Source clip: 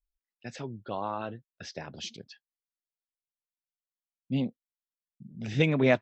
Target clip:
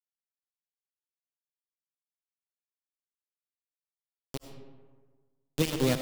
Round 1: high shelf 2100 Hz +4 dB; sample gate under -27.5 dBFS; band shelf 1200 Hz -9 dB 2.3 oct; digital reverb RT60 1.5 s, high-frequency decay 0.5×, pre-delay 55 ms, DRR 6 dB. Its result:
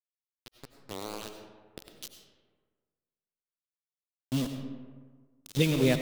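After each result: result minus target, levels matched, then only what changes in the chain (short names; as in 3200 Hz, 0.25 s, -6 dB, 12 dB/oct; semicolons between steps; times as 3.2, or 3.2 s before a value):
sample gate: distortion -8 dB; 2000 Hz band +3.5 dB
change: sample gate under -21 dBFS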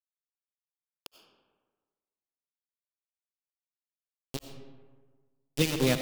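2000 Hz band +3.0 dB
change: high shelf 2100 Hz -6.5 dB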